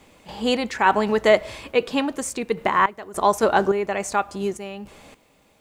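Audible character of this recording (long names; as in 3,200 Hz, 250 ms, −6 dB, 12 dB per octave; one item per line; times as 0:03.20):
sample-and-hold tremolo, depth 90%
a quantiser's noise floor 12 bits, dither none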